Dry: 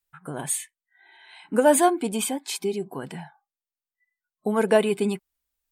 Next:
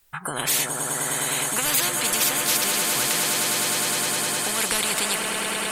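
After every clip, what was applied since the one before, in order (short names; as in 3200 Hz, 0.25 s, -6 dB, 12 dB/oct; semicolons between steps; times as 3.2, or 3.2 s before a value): swelling echo 0.103 s, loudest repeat 8, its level -16.5 dB; spectral compressor 10:1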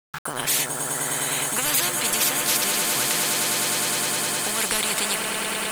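sample gate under -31 dBFS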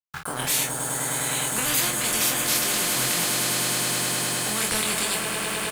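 bell 66 Hz +8 dB 2.3 oct; on a send: early reflections 23 ms -3 dB, 47 ms -7 dB; on the sum: gain -3.5 dB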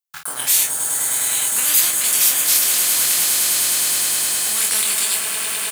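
tilt +3.5 dB/oct; gain -2.5 dB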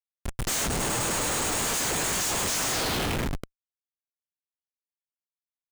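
delay with a stepping band-pass 0.251 s, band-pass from 860 Hz, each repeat 0.7 oct, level -5 dB; band-pass sweep 6600 Hz -> 680 Hz, 2.68–3.75; Schmitt trigger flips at -24.5 dBFS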